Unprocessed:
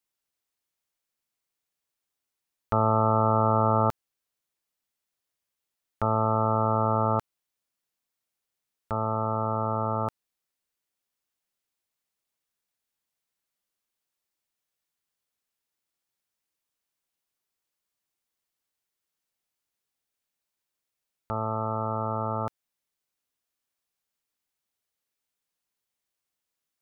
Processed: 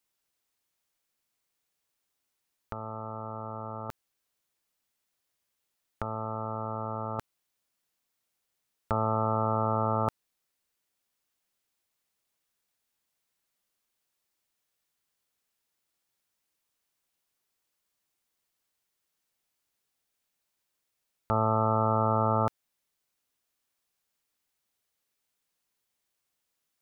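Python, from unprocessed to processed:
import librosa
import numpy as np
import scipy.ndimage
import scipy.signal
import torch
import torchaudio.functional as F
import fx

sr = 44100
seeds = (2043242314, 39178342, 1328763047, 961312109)

y = fx.over_compress(x, sr, threshold_db=-29.0, ratio=-0.5)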